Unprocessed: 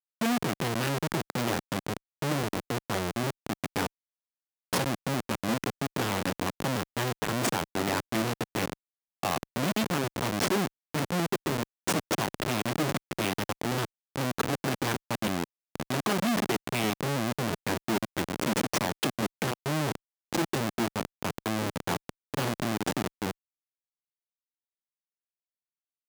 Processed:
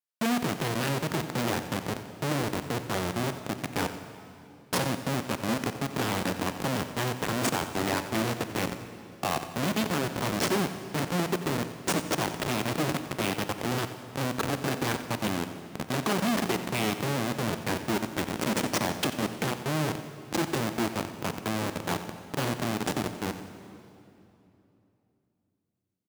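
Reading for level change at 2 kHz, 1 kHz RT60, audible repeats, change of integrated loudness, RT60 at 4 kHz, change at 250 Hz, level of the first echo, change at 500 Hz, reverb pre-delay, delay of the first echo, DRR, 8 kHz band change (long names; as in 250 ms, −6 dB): +0.5 dB, 2.8 s, 2, +0.5 dB, 2.4 s, +0.5 dB, −13.5 dB, +0.5 dB, 28 ms, 90 ms, 8.5 dB, +0.5 dB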